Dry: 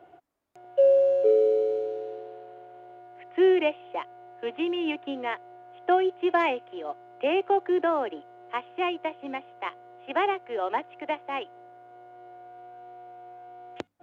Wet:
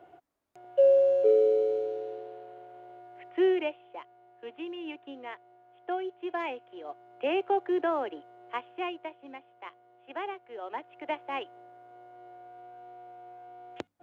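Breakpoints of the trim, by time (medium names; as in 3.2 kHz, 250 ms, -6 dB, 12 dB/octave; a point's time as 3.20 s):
3.24 s -1.5 dB
3.94 s -10.5 dB
6.29 s -10.5 dB
7.30 s -3.5 dB
8.56 s -3.5 dB
9.28 s -11 dB
10.62 s -11 dB
11.16 s -2.5 dB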